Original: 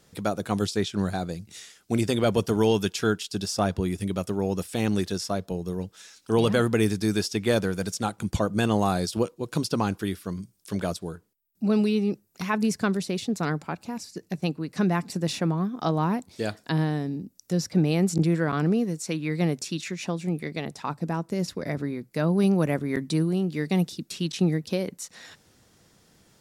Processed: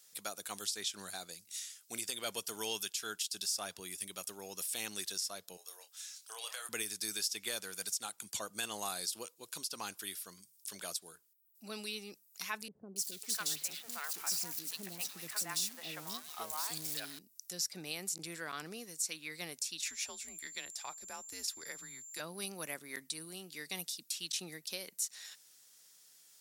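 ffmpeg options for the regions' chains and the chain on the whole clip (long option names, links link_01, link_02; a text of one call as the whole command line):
ffmpeg -i in.wav -filter_complex "[0:a]asettb=1/sr,asplit=3[link_01][link_02][link_03];[link_01]atrim=end=5.574[link_04];[link_02]atrim=start=5.57:end=6.69,asetpts=PTS-STARTPTS,afade=type=in:duration=0.004:curve=qsin,afade=type=out:start_time=1.116:duration=0.004:curve=qsin,highpass=frequency=580:width=0.5412,highpass=frequency=580:width=1.3066,acompressor=threshold=-31dB:ratio=5:attack=3.2:release=140:knee=1:detection=peak,asplit=2[link_05][link_06];[link_06]adelay=28,volume=-8.5dB[link_07];[link_05][link_07]amix=inputs=2:normalize=0,atrim=end_sample=49392[link_08];[link_03]atrim=start=6.686[link_09];[link_04][link_08]acrossfade=duration=0.004:curve1=hsin:curve2=qsin[link_10];[link_10][link_09]acrossfade=duration=0.004:curve1=qsin:curve2=hsin,asettb=1/sr,asplit=3[link_11][link_12][link_13];[link_11]atrim=end=12.684[link_14];[link_12]atrim=start=12.68:end=17.19,asetpts=PTS-STARTPTS,afade=type=in:duration=0.004:curve=qsin,afade=type=out:start_time=4.506:duration=0.004:curve=qsin,aeval=exprs='val(0)+0.5*0.0178*sgn(val(0))':channel_layout=same,acrossover=split=530|3000[link_15][link_16][link_17];[link_17]adelay=280[link_18];[link_16]adelay=550[link_19];[link_15][link_19][link_18]amix=inputs=3:normalize=0,atrim=end_sample=198891[link_20];[link_13]atrim=start=17.186[link_21];[link_14][link_20]acrossfade=duration=0.004:curve1=hsin:curve2=qsin[link_22];[link_22][link_21]acrossfade=duration=0.004:curve1=qsin:curve2=hsin,asettb=1/sr,asplit=3[link_23][link_24][link_25];[link_23]atrim=end=19.894[link_26];[link_24]atrim=start=19.89:end=22.2,asetpts=PTS-STARTPTS,afade=type=in:duration=0.004:curve=qsin,afade=type=out:start_time=2.306:duration=0.004:curve=qsin,highpass=240,aeval=exprs='val(0)+0.00282*sin(2*PI*7400*n/s)':channel_layout=same,afreqshift=-120[link_27];[link_25]atrim=start=22.196[link_28];[link_26][link_27]acrossfade=duration=0.004:curve1=hsin:curve2=qsin[link_29];[link_29][link_28]acrossfade=duration=0.004:curve1=qsin:curve2=hsin,aderivative,alimiter=level_in=2.5dB:limit=-24dB:level=0:latency=1:release=201,volume=-2.5dB,volume=3dB" out.wav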